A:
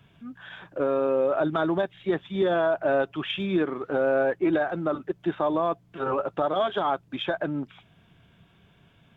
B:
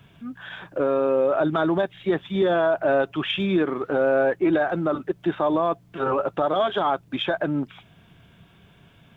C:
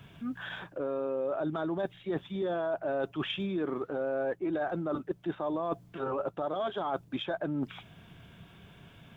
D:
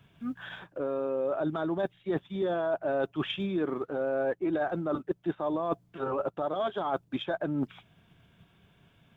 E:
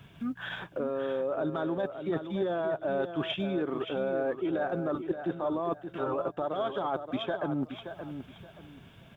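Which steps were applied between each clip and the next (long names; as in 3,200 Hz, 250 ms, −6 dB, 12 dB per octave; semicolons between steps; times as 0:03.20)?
in parallel at +1 dB: brickwall limiter −21 dBFS, peak gain reduction 7 dB; on the sum: bit-depth reduction 12 bits, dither none; level −1.5 dB
dynamic equaliser 2,200 Hz, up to −5 dB, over −40 dBFS, Q 0.72; reversed playback; downward compressor, threshold −30 dBFS, peak gain reduction 12 dB; reversed playback
expander for the loud parts 1.5 to 1, over −53 dBFS; level +3.5 dB
downward compressor 2 to 1, threshold −43 dBFS, peak gain reduction 10.5 dB; on a send: repeating echo 575 ms, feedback 26%, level −9 dB; on the sum: level +7.5 dB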